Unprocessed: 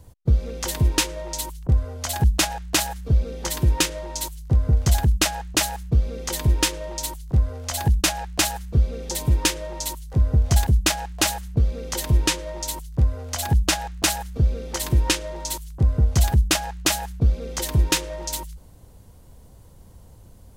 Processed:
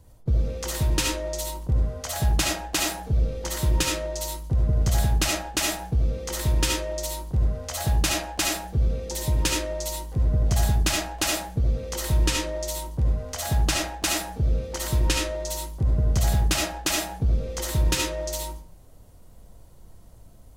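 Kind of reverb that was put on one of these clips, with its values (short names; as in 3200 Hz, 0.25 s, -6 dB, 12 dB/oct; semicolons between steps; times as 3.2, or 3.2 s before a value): digital reverb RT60 0.46 s, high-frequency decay 0.5×, pre-delay 30 ms, DRR -1 dB; gain -5.5 dB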